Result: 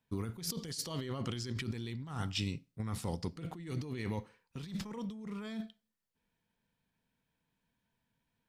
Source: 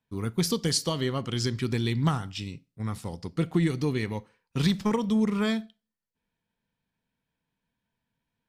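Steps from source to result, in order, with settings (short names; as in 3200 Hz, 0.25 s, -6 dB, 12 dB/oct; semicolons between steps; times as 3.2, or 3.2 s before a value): negative-ratio compressor -34 dBFS, ratio -1; gain -5.5 dB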